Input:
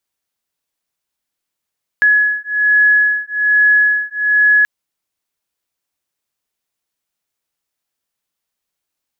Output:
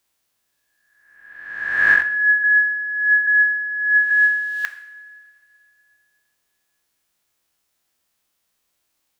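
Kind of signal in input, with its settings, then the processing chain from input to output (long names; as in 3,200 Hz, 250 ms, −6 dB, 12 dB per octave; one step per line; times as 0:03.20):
two tones that beat 1,690 Hz, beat 1.2 Hz, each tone −13 dBFS 2.63 s
peak hold with a rise ahead of every peak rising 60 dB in 1.17 s
compressor whose output falls as the input rises −16 dBFS, ratio −0.5
coupled-rooms reverb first 0.71 s, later 3 s, from −18 dB, DRR 8 dB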